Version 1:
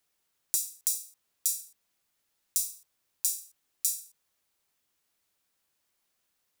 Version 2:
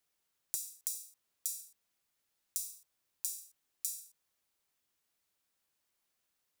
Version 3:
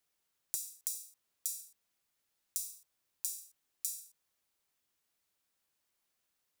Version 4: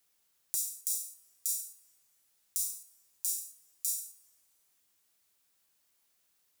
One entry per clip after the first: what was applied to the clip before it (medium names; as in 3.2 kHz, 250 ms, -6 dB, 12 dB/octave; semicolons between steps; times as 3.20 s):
compression, threshold -28 dBFS, peak gain reduction 6 dB; trim -4.5 dB
no audible change
treble shelf 4.5 kHz +6 dB; peak limiter -12 dBFS, peak gain reduction 8 dB; two-slope reverb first 0.8 s, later 2.8 s, from -18 dB, DRR 14.5 dB; trim +3.5 dB